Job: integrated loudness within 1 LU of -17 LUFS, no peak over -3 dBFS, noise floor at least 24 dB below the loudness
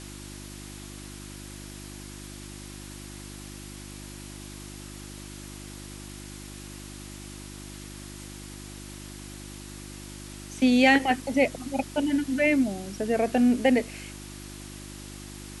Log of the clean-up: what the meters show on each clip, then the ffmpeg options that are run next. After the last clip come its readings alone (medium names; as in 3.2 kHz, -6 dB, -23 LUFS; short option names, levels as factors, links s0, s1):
hum 50 Hz; highest harmonic 350 Hz; hum level -41 dBFS; noise floor -42 dBFS; noise floor target -48 dBFS; loudness -24.0 LUFS; peak level -6.5 dBFS; loudness target -17.0 LUFS
-> -af "bandreject=f=50:t=h:w=4,bandreject=f=100:t=h:w=4,bandreject=f=150:t=h:w=4,bandreject=f=200:t=h:w=4,bandreject=f=250:t=h:w=4,bandreject=f=300:t=h:w=4,bandreject=f=350:t=h:w=4"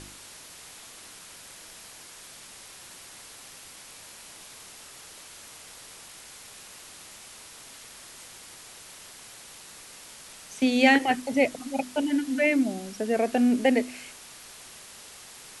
hum not found; noise floor -47 dBFS; noise floor target -49 dBFS
-> -af "afftdn=nr=6:nf=-47"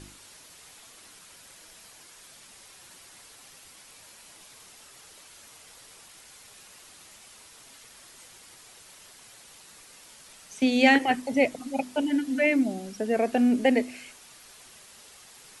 noise floor -52 dBFS; loudness -24.5 LUFS; peak level -7.0 dBFS; loudness target -17.0 LUFS
-> -af "volume=2.37,alimiter=limit=0.708:level=0:latency=1"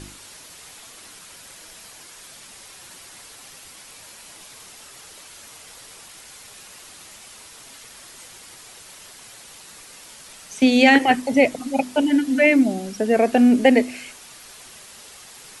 loudness -17.5 LUFS; peak level -3.0 dBFS; noise floor -44 dBFS